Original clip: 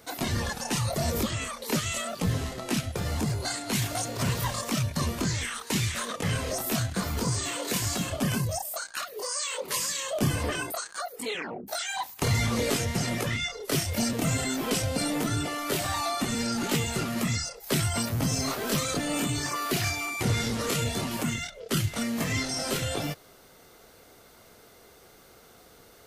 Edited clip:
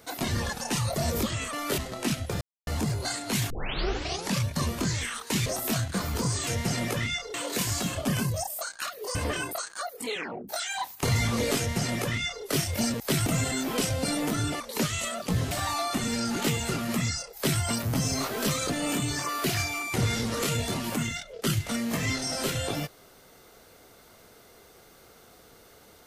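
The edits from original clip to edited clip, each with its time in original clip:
1.53–2.44 swap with 15.53–15.78
3.07 insert silence 0.26 s
3.9 tape start 0.97 s
5.86–6.48 cut
9.3–10.34 cut
12.77–13.64 copy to 7.49
17.62–17.88 copy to 14.19

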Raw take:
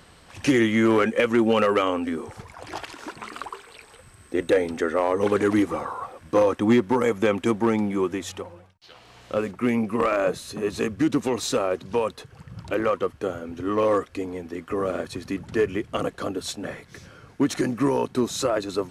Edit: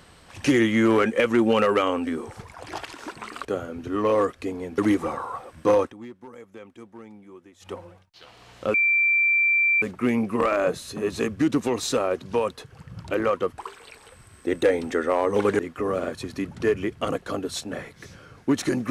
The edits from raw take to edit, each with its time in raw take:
3.45–5.46 swap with 13.18–14.51
6.48–8.42 dip -22 dB, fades 0.14 s
9.42 add tone 2350 Hz -17 dBFS 1.08 s

